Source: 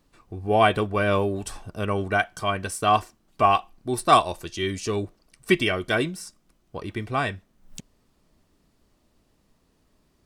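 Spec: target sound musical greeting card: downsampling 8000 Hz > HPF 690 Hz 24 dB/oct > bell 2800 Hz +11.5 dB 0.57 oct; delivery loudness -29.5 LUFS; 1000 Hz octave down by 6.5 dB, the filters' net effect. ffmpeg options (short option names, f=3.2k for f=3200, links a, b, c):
-af "equalizer=f=1k:t=o:g=-8,aresample=8000,aresample=44100,highpass=f=690:w=0.5412,highpass=f=690:w=1.3066,equalizer=f=2.8k:t=o:w=0.57:g=11.5,volume=-4.5dB"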